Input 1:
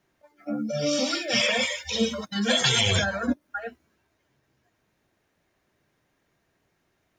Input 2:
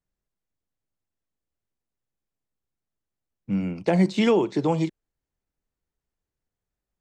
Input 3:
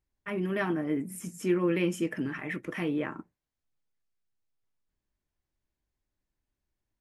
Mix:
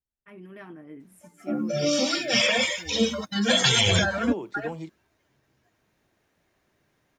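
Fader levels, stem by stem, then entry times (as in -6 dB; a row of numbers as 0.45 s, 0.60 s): +1.5 dB, -13.0 dB, -14.0 dB; 1.00 s, 0.00 s, 0.00 s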